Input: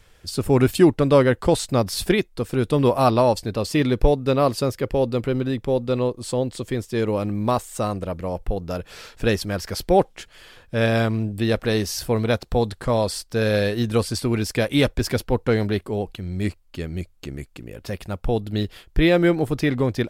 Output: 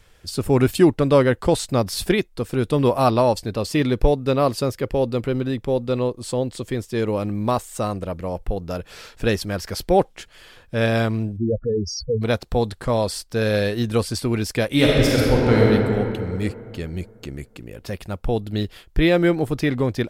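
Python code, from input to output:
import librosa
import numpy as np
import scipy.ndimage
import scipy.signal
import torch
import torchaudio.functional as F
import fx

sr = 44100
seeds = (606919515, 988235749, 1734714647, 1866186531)

y = fx.spec_expand(x, sr, power=3.8, at=(11.36, 12.21), fade=0.02)
y = fx.reverb_throw(y, sr, start_s=14.67, length_s=1.02, rt60_s=2.6, drr_db=-4.5)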